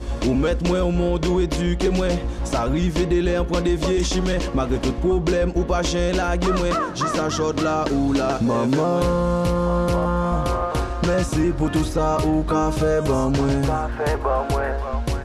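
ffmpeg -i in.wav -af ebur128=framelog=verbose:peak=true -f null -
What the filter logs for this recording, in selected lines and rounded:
Integrated loudness:
  I:         -21.3 LUFS
  Threshold: -31.3 LUFS
Loudness range:
  LRA:         0.9 LU
  Threshold: -41.2 LUFS
  LRA low:   -21.6 LUFS
  LRA high:  -20.7 LUFS
True peak:
  Peak:      -10.0 dBFS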